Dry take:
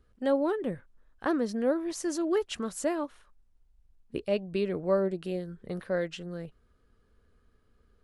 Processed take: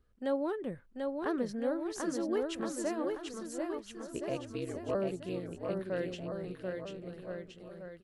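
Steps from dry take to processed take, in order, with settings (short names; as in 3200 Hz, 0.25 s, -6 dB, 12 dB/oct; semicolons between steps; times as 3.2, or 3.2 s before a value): 4.29–4.95 ring modulator 71 Hz; bouncing-ball echo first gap 0.74 s, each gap 0.85×, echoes 5; gain -6 dB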